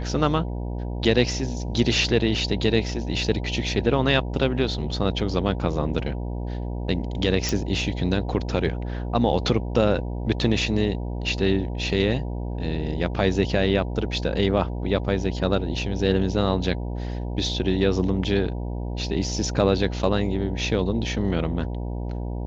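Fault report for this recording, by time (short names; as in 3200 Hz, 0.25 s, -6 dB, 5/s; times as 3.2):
buzz 60 Hz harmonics 16 -29 dBFS
7.49 pop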